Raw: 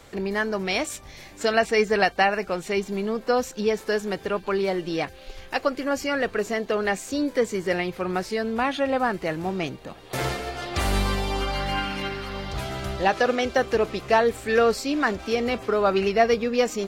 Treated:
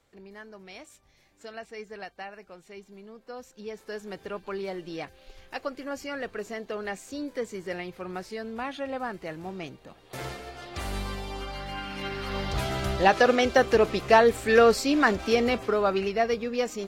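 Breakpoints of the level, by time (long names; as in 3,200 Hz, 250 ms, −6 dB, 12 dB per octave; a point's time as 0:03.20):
0:03.25 −20 dB
0:04.21 −9.5 dB
0:11.78 −9.5 dB
0:12.35 +1.5 dB
0:15.38 +1.5 dB
0:16.11 −6 dB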